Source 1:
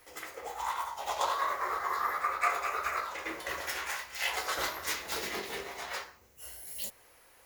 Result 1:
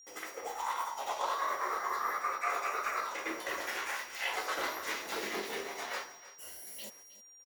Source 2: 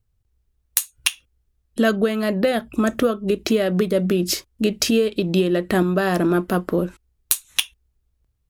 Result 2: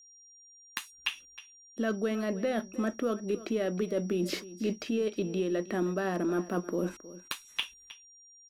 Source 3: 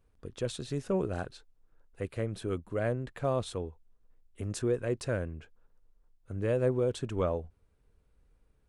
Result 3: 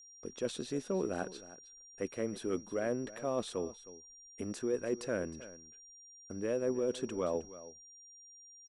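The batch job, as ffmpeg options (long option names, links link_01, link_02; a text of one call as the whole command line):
ffmpeg -i in.wav -filter_complex "[0:a]acrossover=split=3300[link_01][link_02];[link_02]acompressor=threshold=-42dB:ratio=4:attack=1:release=60[link_03];[link_01][link_03]amix=inputs=2:normalize=0,agate=range=-25dB:threshold=-57dB:ratio=16:detection=peak,lowshelf=frequency=160:width_type=q:width=1.5:gain=-11,areverse,acompressor=threshold=-30dB:ratio=4,areverse,aeval=exprs='0.211*(cos(1*acos(clip(val(0)/0.211,-1,1)))-cos(1*PI/2))+0.00266*(cos(4*acos(clip(val(0)/0.211,-1,1)))-cos(4*PI/2))':channel_layout=same,aeval=exprs='val(0)+0.002*sin(2*PI*5700*n/s)':channel_layout=same,aecho=1:1:314:0.15" out.wav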